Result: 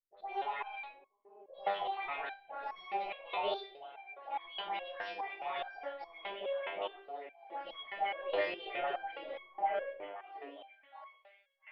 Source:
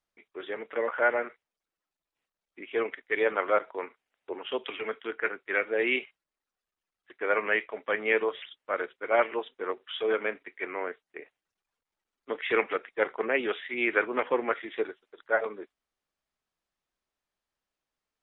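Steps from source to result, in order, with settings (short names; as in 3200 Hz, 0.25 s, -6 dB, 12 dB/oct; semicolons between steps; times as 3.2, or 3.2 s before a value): speed glide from 179% -> 132%; reverse; compressor 6:1, threshold -34 dBFS, peak gain reduction 14 dB; reverse; high shelf 2400 Hz -11 dB; dispersion highs, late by 81 ms, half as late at 1100 Hz; expander -59 dBFS; LPF 3300 Hz 24 dB/oct; on a send: delay with a stepping band-pass 0.657 s, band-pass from 350 Hz, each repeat 1.4 oct, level -9.5 dB; on the sum: limiter -35.5 dBFS, peak gain reduction 10 dB; low shelf 200 Hz +3.5 dB; shoebox room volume 48 m³, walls mixed, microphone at 1.2 m; stepped resonator 4.8 Hz 100–1100 Hz; gain +13 dB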